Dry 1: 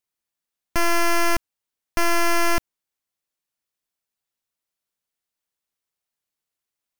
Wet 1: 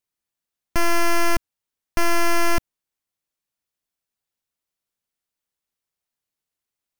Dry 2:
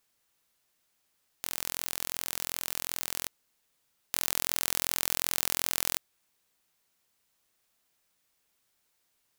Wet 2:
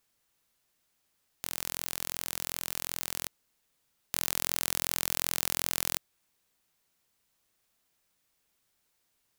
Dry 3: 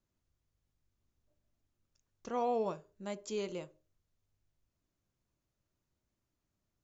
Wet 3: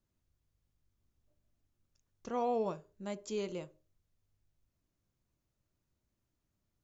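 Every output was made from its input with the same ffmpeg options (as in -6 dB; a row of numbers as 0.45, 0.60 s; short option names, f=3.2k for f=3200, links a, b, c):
-af "lowshelf=f=270:g=4,volume=-1dB"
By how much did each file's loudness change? -0.5, -1.0, 0.0 LU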